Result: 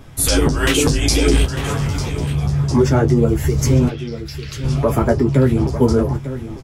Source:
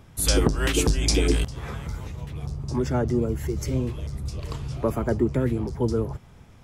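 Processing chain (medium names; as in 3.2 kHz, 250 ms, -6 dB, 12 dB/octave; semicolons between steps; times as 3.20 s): 3.88–4.64 s: Chebyshev band-pass 1.4–5.5 kHz, order 4; in parallel at -1 dB: gain riding within 3 dB; on the sum: peak limiter -10.5 dBFS, peak gain reduction 6 dB; chorus voices 6, 1 Hz, delay 11 ms, depth 4 ms; doubling 21 ms -11 dB; on a send: delay 899 ms -12.5 dB; on the sum: trim +8 dB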